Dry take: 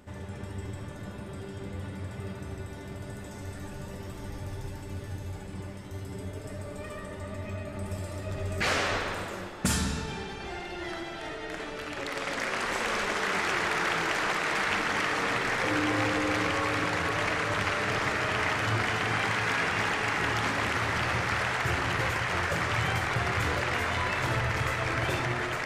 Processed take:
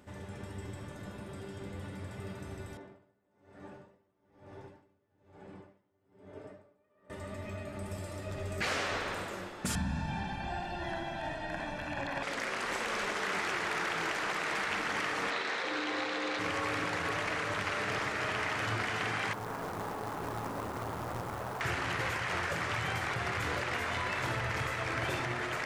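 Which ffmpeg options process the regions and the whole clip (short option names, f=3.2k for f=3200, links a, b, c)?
-filter_complex "[0:a]asettb=1/sr,asplit=3[a][b][c];[a]atrim=end=2.774[d];[b]atrim=start=2.77:end=7.1,asetpts=PTS-STARTPTS,afade=t=in:d=0.004:c=qsin,afade=t=out:st=4.326:d=0.004:c=qsin,bandpass=f=560:t=q:w=0.53,aeval=exprs='val(0)*pow(10,-29*(0.5-0.5*cos(2*PI*1.1*n/s))/20)':c=same[e];[c]atrim=start=7.096[f];[d][e]acrossfade=d=0.004:c1=hsin:c2=qsin[g];[g][f]acrossfade=d=0.004:c1=qsin:c2=hsin,asettb=1/sr,asplit=3[h][i][j];[h]atrim=end=9.754[k];[i]atrim=start=9.75:end=12.23,asetpts=PTS-STARTPTS,afade=t=in:d=0.004:c=qsin,afade=t=out:st=2.476:d=0.004:c=qsin,acrossover=split=3800[l][m];[m]acompressor=threshold=-52dB:ratio=4:attack=1:release=60[n];[l][n]amix=inputs=2:normalize=0,tiltshelf=f=1.2k:g=4,aecho=1:1:1.2:0.94,atrim=end_sample=109368[o];[j]atrim=start=12.226[p];[k][o]acrossfade=d=0.004:c1=hsin:c2=qsin[q];[q][p]acrossfade=d=0.004:c1=qsin:c2=hsin,asettb=1/sr,asplit=3[r][s][t];[r]atrim=end=15.304[u];[s]atrim=start=15.3:end=16.39,asetpts=PTS-STARTPTS,afade=t=in:d=0.004:c=qsin,afade=t=out:st=1.086:d=0.004:c=qsin,highpass=280,lowpass=6.8k,equalizer=f=3.9k:w=4:g=8.5,asplit=2[v][w];[w]adelay=34,volume=-12.5dB[x];[v][x]amix=inputs=2:normalize=0,atrim=end_sample=48069[y];[t]atrim=start=16.386[z];[u][y]acrossfade=d=0.004:c1=hsin:c2=qsin[aa];[aa][z]acrossfade=d=0.004:c1=qsin:c2=hsin,asettb=1/sr,asplit=3[ab][ac][ad];[ab]atrim=end=19.334[ae];[ac]atrim=start=19.33:end=21.61,asetpts=PTS-STARTPTS,afade=t=in:d=0.004:c=qsin,afade=t=out:st=2.276:d=0.004:c=qsin,lowpass=f=1.1k:w=0.5412,lowpass=f=1.1k:w=1.3066,aeval=exprs='clip(val(0),-1,0.015)':c=same,acrusher=bits=3:mode=log:mix=0:aa=0.000001[af];[ad]atrim=start=21.606[ag];[ae][af]acrossfade=d=0.004:c1=hsin:c2=qsin[ah];[ah][ag]acrossfade=d=0.004:c1=qsin:c2=hsin,lowshelf=f=89:g=-6.5,alimiter=limit=-21.5dB:level=0:latency=1:release=233,volume=-3dB"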